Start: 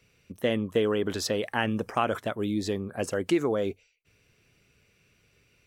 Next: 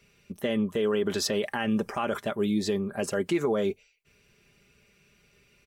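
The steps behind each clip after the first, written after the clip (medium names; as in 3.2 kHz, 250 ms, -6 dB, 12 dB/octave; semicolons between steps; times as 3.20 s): comb 5 ms, depth 52%; peak limiter -18.5 dBFS, peak gain reduction 8 dB; trim +1.5 dB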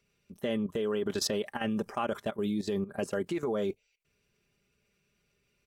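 peaking EQ 2.2 kHz -3 dB 0.91 oct; level held to a coarse grid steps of 15 dB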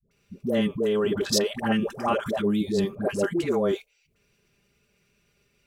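phase dispersion highs, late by 112 ms, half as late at 510 Hz; trim +7 dB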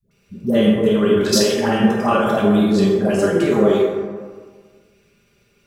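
plate-style reverb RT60 1.6 s, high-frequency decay 0.45×, DRR -3.5 dB; trim +3.5 dB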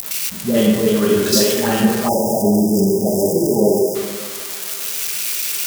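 zero-crossing glitches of -12 dBFS; spectral selection erased 2.08–3.95 s, 970–4800 Hz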